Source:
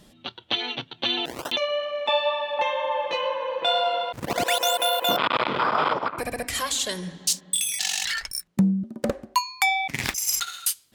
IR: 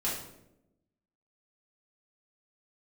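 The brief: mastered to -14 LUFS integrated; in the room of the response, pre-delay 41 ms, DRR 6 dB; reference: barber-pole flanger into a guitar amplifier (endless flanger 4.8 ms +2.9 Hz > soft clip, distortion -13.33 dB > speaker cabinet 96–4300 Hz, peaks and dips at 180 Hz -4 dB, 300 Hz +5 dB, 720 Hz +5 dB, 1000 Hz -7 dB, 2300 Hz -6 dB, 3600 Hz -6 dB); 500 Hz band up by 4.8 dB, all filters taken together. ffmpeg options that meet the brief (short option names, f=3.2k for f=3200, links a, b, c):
-filter_complex "[0:a]equalizer=f=500:t=o:g=4,asplit=2[a][b];[1:a]atrim=start_sample=2205,adelay=41[c];[b][c]afir=irnorm=-1:irlink=0,volume=-12dB[d];[a][d]amix=inputs=2:normalize=0,asplit=2[e][f];[f]adelay=4.8,afreqshift=2.9[g];[e][g]amix=inputs=2:normalize=1,asoftclip=threshold=-21dB,highpass=96,equalizer=f=180:t=q:w=4:g=-4,equalizer=f=300:t=q:w=4:g=5,equalizer=f=720:t=q:w=4:g=5,equalizer=f=1k:t=q:w=4:g=-7,equalizer=f=2.3k:t=q:w=4:g=-6,equalizer=f=3.6k:t=q:w=4:g=-6,lowpass=f=4.3k:w=0.5412,lowpass=f=4.3k:w=1.3066,volume=15.5dB"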